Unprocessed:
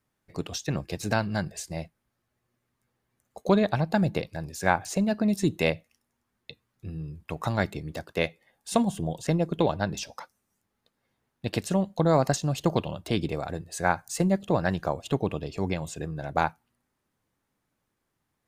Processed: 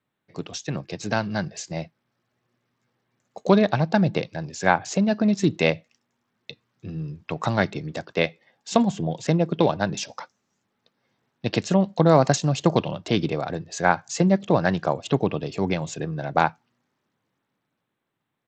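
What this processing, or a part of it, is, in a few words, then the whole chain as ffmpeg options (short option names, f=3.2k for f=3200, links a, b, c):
Bluetooth headset: -af "highpass=f=110:w=0.5412,highpass=f=110:w=1.3066,dynaudnorm=f=350:g=9:m=7dB,aresample=16000,aresample=44100" -ar 32000 -c:a sbc -b:a 64k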